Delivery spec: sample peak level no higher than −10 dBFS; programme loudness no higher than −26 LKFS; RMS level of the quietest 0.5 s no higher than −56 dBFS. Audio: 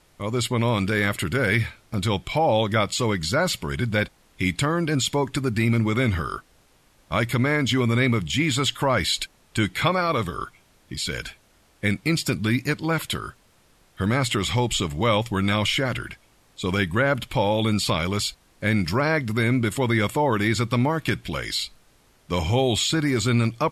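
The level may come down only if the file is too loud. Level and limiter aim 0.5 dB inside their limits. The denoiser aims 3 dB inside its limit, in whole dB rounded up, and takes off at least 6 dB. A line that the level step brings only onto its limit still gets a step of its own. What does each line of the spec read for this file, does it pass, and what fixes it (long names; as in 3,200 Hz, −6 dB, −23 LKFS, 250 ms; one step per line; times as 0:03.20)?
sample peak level −8.5 dBFS: out of spec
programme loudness −23.5 LKFS: out of spec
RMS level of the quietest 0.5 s −59 dBFS: in spec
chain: level −3 dB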